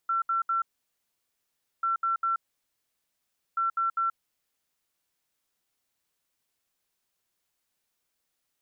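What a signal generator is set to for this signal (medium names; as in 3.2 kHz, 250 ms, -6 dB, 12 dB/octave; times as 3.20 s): beep pattern sine 1.35 kHz, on 0.13 s, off 0.07 s, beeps 3, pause 1.21 s, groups 3, -23.5 dBFS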